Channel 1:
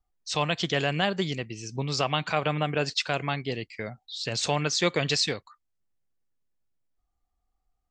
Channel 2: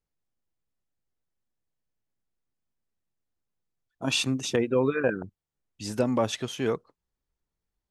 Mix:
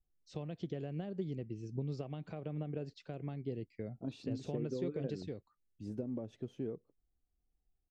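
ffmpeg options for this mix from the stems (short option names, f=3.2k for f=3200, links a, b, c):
-filter_complex "[0:a]acompressor=threshold=-29dB:ratio=6,volume=-3.5dB[a];[1:a]acompressor=threshold=-28dB:ratio=6,volume=-6.5dB[b];[a][b]amix=inputs=2:normalize=0,firequalizer=gain_entry='entry(370,0);entry(980,-19);entry(10000,-27)':delay=0.05:min_phase=1"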